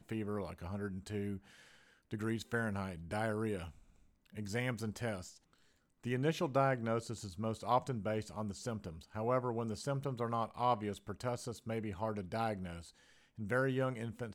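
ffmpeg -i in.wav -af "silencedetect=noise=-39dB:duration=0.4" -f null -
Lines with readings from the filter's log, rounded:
silence_start: 1.37
silence_end: 2.13 | silence_duration: 0.76
silence_start: 3.65
silence_end: 4.38 | silence_duration: 0.73
silence_start: 5.21
silence_end: 6.05 | silence_duration: 0.85
silence_start: 12.78
silence_end: 13.40 | silence_duration: 0.61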